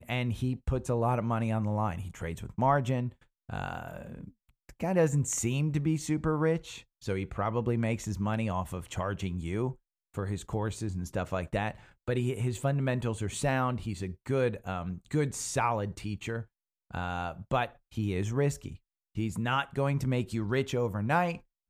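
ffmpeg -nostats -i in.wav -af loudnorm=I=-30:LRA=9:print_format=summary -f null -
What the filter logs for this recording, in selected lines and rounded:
Input Integrated:    -31.5 LUFS
Input True Peak:     -12.7 dBTP
Input LRA:             3.6 LU
Input Threshold:     -41.9 LUFS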